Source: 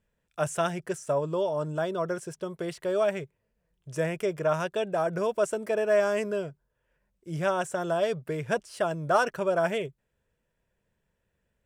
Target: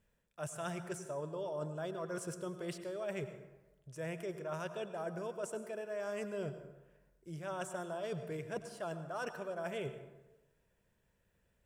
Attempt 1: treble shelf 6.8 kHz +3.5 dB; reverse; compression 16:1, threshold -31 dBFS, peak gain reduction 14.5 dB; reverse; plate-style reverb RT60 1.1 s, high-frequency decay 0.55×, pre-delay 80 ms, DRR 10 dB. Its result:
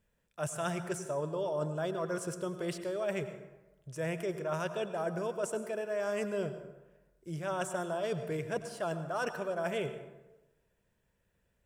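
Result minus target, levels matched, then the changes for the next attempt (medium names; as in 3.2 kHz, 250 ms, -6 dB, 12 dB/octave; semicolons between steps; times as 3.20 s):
compression: peak gain reduction -6 dB
change: compression 16:1, threshold -37.5 dBFS, peak gain reduction 20.5 dB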